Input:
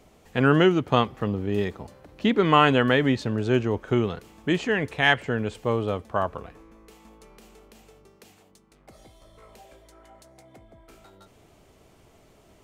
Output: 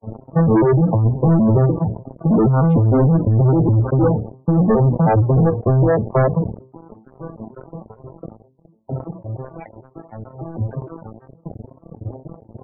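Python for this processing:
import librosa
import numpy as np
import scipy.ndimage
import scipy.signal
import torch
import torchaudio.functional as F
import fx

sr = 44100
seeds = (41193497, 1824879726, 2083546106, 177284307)

y = fx.vocoder_arp(x, sr, chord='minor triad', root=45, every_ms=153)
y = fx.dereverb_blind(y, sr, rt60_s=1.4)
y = scipy.signal.sosfilt(scipy.signal.butter(4, 1000.0, 'lowpass', fs=sr, output='sos'), y)
y = fx.low_shelf(y, sr, hz=200.0, db=10.5)
y = fx.hum_notches(y, sr, base_hz=60, count=8)
y = fx.over_compress(y, sr, threshold_db=-24.0, ratio=-1.0)
y = fx.leveller(y, sr, passes=5)
y = fx.spec_topn(y, sr, count=32)
y = fx.sustainer(y, sr, db_per_s=130.0)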